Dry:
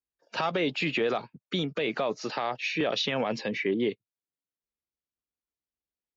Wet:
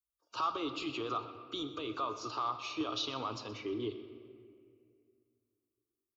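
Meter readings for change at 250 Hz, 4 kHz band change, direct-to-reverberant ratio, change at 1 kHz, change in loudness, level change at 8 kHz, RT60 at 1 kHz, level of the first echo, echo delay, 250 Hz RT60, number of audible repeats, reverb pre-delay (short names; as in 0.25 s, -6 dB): -8.5 dB, -7.0 dB, 7.5 dB, -2.5 dB, -8.0 dB, n/a, 1.9 s, -17.0 dB, 0.124 s, 2.6 s, 1, 4 ms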